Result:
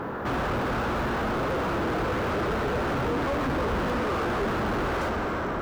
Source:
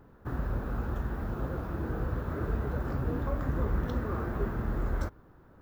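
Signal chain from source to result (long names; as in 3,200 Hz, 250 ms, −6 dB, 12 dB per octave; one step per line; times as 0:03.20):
dense smooth reverb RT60 3.7 s, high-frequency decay 0.75×, DRR 8.5 dB
mid-hump overdrive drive 43 dB, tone 1,400 Hz, clips at −17.5 dBFS
level −2 dB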